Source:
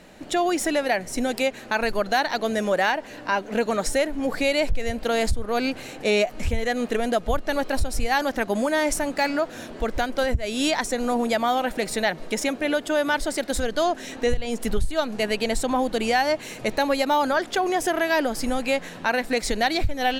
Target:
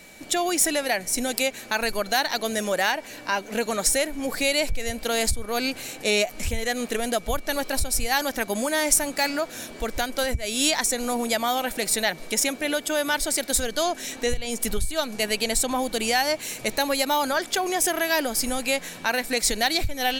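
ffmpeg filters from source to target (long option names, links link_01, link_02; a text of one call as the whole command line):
ffmpeg -i in.wav -af "crystalizer=i=3.5:c=0,aeval=exprs='val(0)+0.00501*sin(2*PI*2300*n/s)':channel_layout=same,volume=-3.5dB" out.wav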